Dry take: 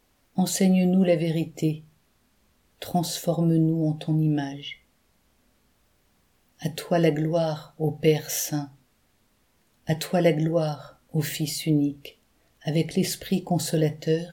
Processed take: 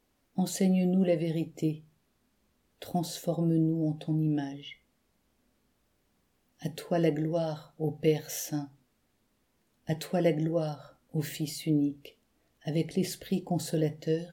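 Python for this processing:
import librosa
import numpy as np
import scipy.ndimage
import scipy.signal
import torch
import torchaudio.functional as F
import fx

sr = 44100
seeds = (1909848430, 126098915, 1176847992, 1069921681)

y = fx.peak_eq(x, sr, hz=300.0, db=4.5, octaves=1.8)
y = y * librosa.db_to_amplitude(-8.5)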